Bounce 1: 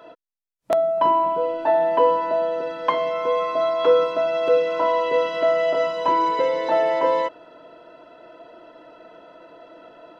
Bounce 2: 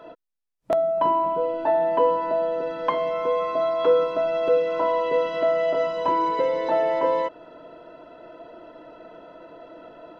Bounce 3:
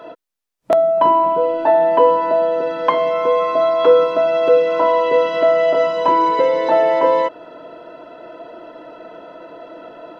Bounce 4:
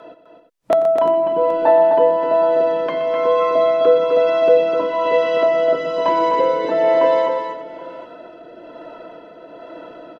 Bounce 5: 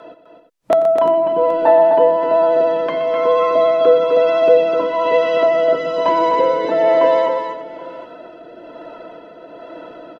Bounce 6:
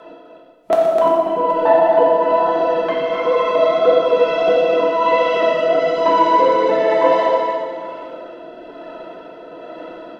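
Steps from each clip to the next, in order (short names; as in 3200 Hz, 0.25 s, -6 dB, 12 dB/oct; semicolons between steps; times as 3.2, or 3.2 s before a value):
tilt -1.5 dB/oct; in parallel at -1.5 dB: compressor, threshold -27 dBFS, peak gain reduction 15 dB; on the sum: gain -5 dB
low shelf 120 Hz -10 dB; gain +8 dB
rotary speaker horn 1.1 Hz; tapped delay 88/123/255/348/775 ms -18.5/-12/-6/-14/-18.5 dB
vibrato 14 Hz 18 cents; gain +1.5 dB
flange 1.5 Hz, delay 1.6 ms, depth 6.9 ms, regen +70%; non-linear reverb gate 0.46 s falling, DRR -1.5 dB; gain +2.5 dB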